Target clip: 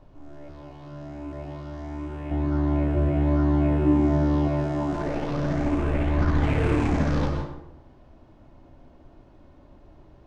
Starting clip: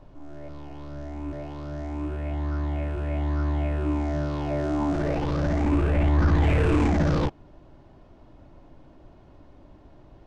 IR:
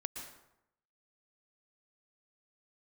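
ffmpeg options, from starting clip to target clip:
-filter_complex "[0:a]asettb=1/sr,asplit=3[s0][s1][s2];[s0]atrim=end=2.314[s3];[s1]atrim=start=2.31:end=4.48,asetpts=PTS-STARTPTS,afade=t=in:d=0.004:c=qsin,afade=t=out:st=2.166:d=0.004:c=qsin,equalizer=f=240:w=0.37:g=10[s4];[s2]atrim=start=4.476[s5];[s3][s4]acrossfade=d=0.004:c1=hsin:c2=qsin[s6];[s6][s5]acrossfade=d=0.004:c1=qsin:c2=hsin[s7];[1:a]atrim=start_sample=2205[s8];[s7][s8]afir=irnorm=-1:irlink=0"

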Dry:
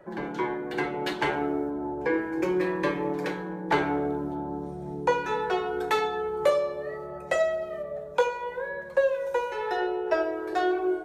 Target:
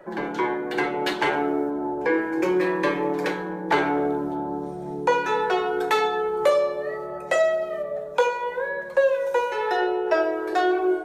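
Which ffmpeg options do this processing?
-filter_complex "[0:a]asplit=2[s0][s1];[s1]alimiter=limit=0.106:level=0:latency=1:release=30,volume=1[s2];[s0][s2]amix=inputs=2:normalize=0,equalizer=f=80:w=0.7:g=-12"

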